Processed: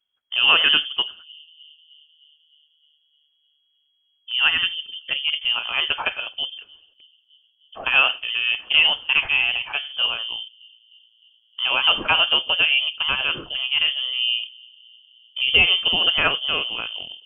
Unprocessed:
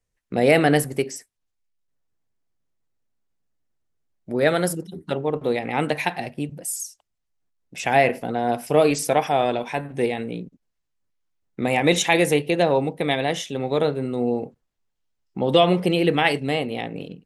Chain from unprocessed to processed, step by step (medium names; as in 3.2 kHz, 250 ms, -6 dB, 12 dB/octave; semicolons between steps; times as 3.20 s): bucket-brigade echo 306 ms, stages 1024, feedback 67%, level -24 dB; frequency inversion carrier 3.3 kHz